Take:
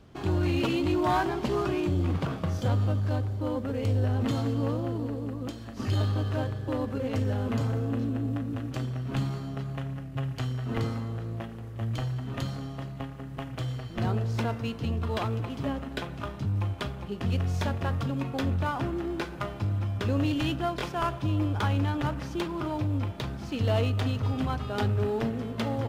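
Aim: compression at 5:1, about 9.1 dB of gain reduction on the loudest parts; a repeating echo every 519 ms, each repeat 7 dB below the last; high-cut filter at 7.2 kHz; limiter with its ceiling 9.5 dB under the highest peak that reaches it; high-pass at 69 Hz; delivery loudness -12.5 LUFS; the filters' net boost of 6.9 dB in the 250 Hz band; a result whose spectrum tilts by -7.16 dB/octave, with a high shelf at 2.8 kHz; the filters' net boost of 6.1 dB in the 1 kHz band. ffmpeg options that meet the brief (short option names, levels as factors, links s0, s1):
-af "highpass=69,lowpass=7200,equalizer=f=250:t=o:g=8,equalizer=f=1000:t=o:g=8,highshelf=f=2800:g=-5.5,acompressor=threshold=0.0398:ratio=5,alimiter=level_in=1.19:limit=0.0631:level=0:latency=1,volume=0.841,aecho=1:1:519|1038|1557|2076|2595:0.447|0.201|0.0905|0.0407|0.0183,volume=10.6"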